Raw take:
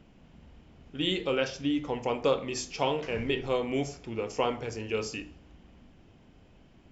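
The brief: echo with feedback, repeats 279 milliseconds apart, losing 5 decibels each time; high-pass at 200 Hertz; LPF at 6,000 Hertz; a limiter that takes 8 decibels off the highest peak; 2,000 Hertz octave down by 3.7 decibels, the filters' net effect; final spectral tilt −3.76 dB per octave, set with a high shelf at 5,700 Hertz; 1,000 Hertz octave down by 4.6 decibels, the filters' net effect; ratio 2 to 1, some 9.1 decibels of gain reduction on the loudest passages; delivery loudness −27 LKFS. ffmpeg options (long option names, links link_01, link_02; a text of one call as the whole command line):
ffmpeg -i in.wav -af "highpass=200,lowpass=6000,equalizer=frequency=1000:width_type=o:gain=-5,equalizer=frequency=2000:width_type=o:gain=-5,highshelf=frequency=5700:gain=6,acompressor=threshold=-39dB:ratio=2,alimiter=level_in=6.5dB:limit=-24dB:level=0:latency=1,volume=-6.5dB,aecho=1:1:279|558|837|1116|1395|1674|1953:0.562|0.315|0.176|0.0988|0.0553|0.031|0.0173,volume=13dB" out.wav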